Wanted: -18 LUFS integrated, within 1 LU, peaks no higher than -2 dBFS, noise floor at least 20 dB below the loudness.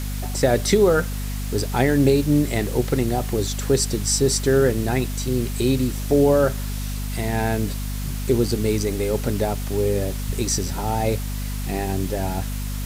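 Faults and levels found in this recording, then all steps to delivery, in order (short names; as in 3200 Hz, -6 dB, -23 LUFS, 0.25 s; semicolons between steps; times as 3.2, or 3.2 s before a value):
hum 50 Hz; harmonics up to 250 Hz; hum level -25 dBFS; noise floor -27 dBFS; noise floor target -42 dBFS; loudness -22.0 LUFS; peak -5.0 dBFS; loudness target -18.0 LUFS
-> de-hum 50 Hz, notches 5; noise print and reduce 15 dB; gain +4 dB; limiter -2 dBFS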